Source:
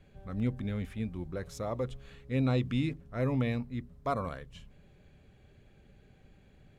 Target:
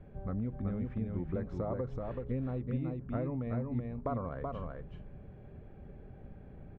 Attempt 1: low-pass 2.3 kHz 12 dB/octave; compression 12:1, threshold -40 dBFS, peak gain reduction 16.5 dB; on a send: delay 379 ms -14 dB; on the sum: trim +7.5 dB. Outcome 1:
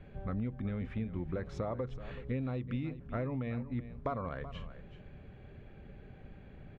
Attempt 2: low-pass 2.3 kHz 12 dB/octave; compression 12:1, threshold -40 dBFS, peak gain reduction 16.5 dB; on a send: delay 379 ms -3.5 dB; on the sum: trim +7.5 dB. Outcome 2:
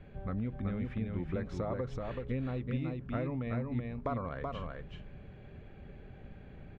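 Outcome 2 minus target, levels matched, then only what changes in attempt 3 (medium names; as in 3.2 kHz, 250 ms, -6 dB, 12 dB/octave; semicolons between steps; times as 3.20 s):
2 kHz band +7.0 dB
change: low-pass 1.1 kHz 12 dB/octave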